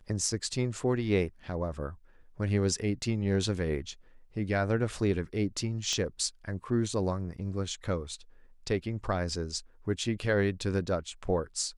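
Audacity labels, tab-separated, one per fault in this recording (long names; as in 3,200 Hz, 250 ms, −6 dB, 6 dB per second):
5.930000	5.930000	click −19 dBFS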